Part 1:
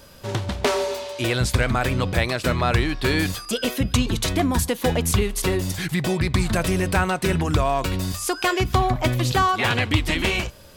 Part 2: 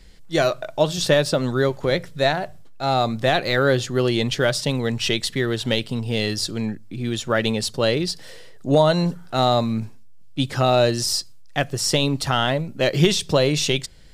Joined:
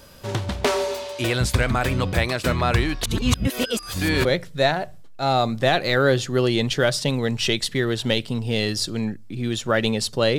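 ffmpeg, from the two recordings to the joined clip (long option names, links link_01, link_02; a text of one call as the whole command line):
ffmpeg -i cue0.wav -i cue1.wav -filter_complex "[0:a]apad=whole_dur=10.38,atrim=end=10.38,asplit=2[link_01][link_02];[link_01]atrim=end=3.032[link_03];[link_02]atrim=start=3.028:end=4.252,asetpts=PTS-STARTPTS,areverse[link_04];[1:a]atrim=start=1.858:end=7.99[link_05];[link_03][link_04]acrossfade=duration=0.004:curve1=hsin:curve2=hsin[link_06];[link_06][link_05]acrossfade=duration=0.004:curve1=hsin:curve2=hsin" out.wav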